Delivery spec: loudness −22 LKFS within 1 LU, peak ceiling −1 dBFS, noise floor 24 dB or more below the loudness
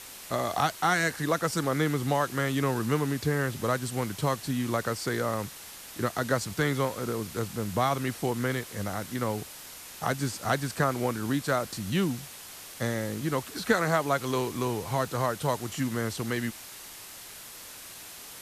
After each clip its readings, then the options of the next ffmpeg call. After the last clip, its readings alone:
background noise floor −45 dBFS; target noise floor −54 dBFS; integrated loudness −29.5 LKFS; sample peak −10.5 dBFS; target loudness −22.0 LKFS
→ -af "afftdn=noise_reduction=9:noise_floor=-45"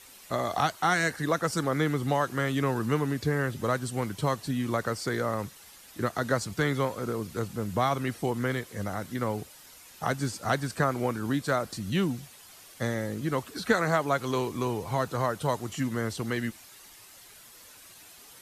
background noise floor −52 dBFS; target noise floor −54 dBFS
→ -af "afftdn=noise_reduction=6:noise_floor=-52"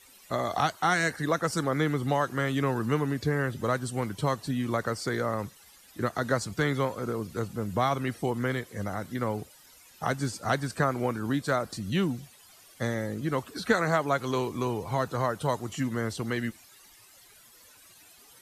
background noise floor −55 dBFS; integrated loudness −29.5 LKFS; sample peak −10.5 dBFS; target loudness −22.0 LKFS
→ -af "volume=7.5dB"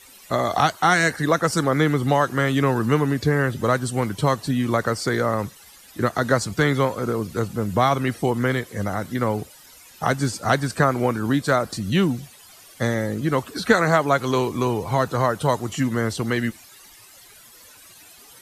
integrated loudness −22.0 LKFS; sample peak −3.0 dBFS; background noise floor −48 dBFS

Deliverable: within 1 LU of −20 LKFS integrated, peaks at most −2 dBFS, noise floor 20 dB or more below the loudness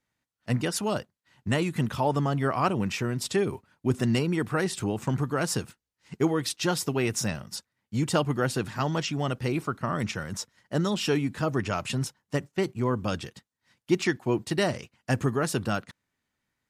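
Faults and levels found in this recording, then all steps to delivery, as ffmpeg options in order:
integrated loudness −28.5 LKFS; sample peak −11.0 dBFS; target loudness −20.0 LKFS
→ -af "volume=8.5dB"

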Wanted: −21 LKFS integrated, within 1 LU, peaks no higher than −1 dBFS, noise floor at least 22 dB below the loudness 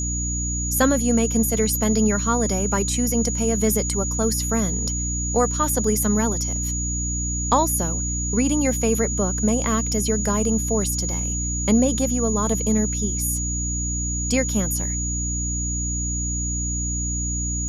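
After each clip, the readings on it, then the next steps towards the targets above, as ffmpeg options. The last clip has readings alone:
mains hum 60 Hz; hum harmonics up to 300 Hz; level of the hum −24 dBFS; interfering tone 6,800 Hz; level of the tone −26 dBFS; integrated loudness −21.5 LKFS; sample peak −6.0 dBFS; target loudness −21.0 LKFS
→ -af "bandreject=frequency=60:width_type=h:width=6,bandreject=frequency=120:width_type=h:width=6,bandreject=frequency=180:width_type=h:width=6,bandreject=frequency=240:width_type=h:width=6,bandreject=frequency=300:width_type=h:width=6"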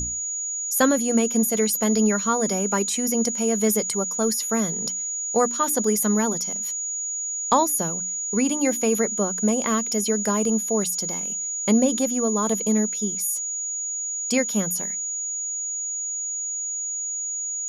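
mains hum none found; interfering tone 6,800 Hz; level of the tone −26 dBFS
→ -af "bandreject=frequency=6800:width=30"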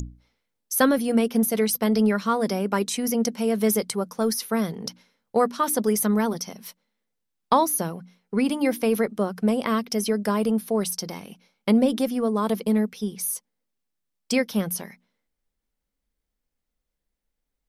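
interfering tone none found; integrated loudness −24.0 LKFS; sample peak −7.5 dBFS; target loudness −21.0 LKFS
→ -af "volume=3dB"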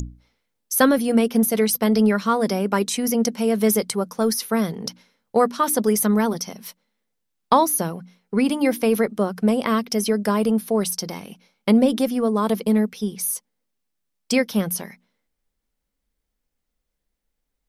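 integrated loudness −21.0 LKFS; sample peak −4.5 dBFS; background noise floor −78 dBFS

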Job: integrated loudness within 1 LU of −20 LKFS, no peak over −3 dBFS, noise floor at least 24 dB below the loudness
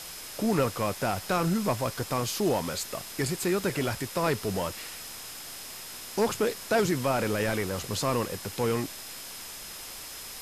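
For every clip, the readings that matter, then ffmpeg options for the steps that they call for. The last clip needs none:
interfering tone 5,100 Hz; level of the tone −48 dBFS; background noise floor −42 dBFS; target noise floor −54 dBFS; integrated loudness −30.0 LKFS; sample peak −15.5 dBFS; target loudness −20.0 LKFS
→ -af "bandreject=frequency=5100:width=30"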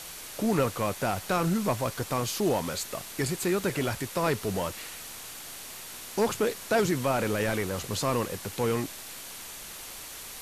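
interfering tone none found; background noise floor −42 dBFS; target noise floor −54 dBFS
→ -af "afftdn=noise_reduction=12:noise_floor=-42"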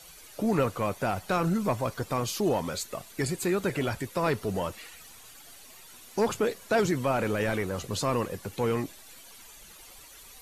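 background noise floor −50 dBFS; target noise floor −54 dBFS
→ -af "afftdn=noise_reduction=6:noise_floor=-50"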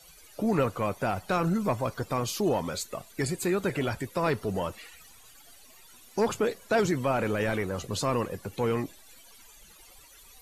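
background noise floor −54 dBFS; integrated loudness −29.5 LKFS; sample peak −15.5 dBFS; target loudness −20.0 LKFS
→ -af "volume=9.5dB"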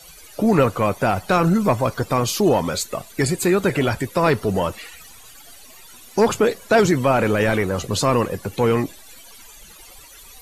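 integrated loudness −20.0 LKFS; sample peak −6.0 dBFS; background noise floor −44 dBFS

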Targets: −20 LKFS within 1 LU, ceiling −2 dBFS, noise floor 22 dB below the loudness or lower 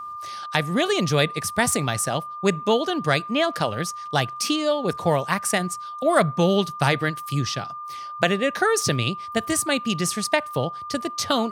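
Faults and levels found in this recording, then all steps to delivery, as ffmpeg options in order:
interfering tone 1,200 Hz; level of the tone −32 dBFS; integrated loudness −23.0 LKFS; sample peak −2.5 dBFS; target loudness −20.0 LKFS
→ -af "bandreject=frequency=1200:width=30"
-af "volume=3dB,alimiter=limit=-2dB:level=0:latency=1"

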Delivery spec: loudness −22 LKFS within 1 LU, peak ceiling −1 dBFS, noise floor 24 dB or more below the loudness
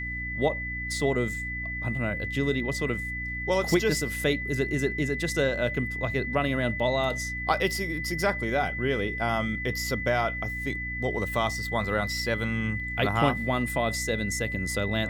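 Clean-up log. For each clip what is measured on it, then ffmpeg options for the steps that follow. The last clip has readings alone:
mains hum 60 Hz; hum harmonics up to 300 Hz; level of the hum −35 dBFS; interfering tone 2,000 Hz; level of the tone −32 dBFS; integrated loudness −27.5 LKFS; sample peak −9.0 dBFS; target loudness −22.0 LKFS
→ -af "bandreject=frequency=60:width_type=h:width=6,bandreject=frequency=120:width_type=h:width=6,bandreject=frequency=180:width_type=h:width=6,bandreject=frequency=240:width_type=h:width=6,bandreject=frequency=300:width_type=h:width=6"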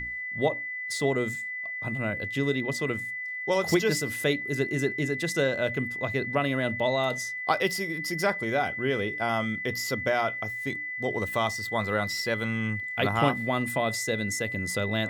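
mains hum none found; interfering tone 2,000 Hz; level of the tone −32 dBFS
→ -af "bandreject=frequency=2000:width=30"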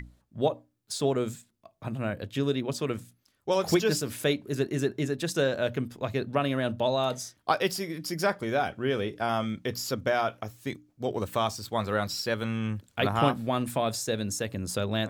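interfering tone none found; integrated loudness −29.5 LKFS; sample peak −9.5 dBFS; target loudness −22.0 LKFS
→ -af "volume=7.5dB"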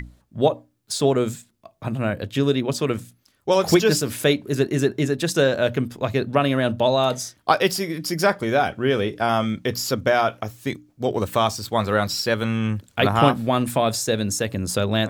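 integrated loudness −22.0 LKFS; sample peak −2.0 dBFS; background noise floor −64 dBFS

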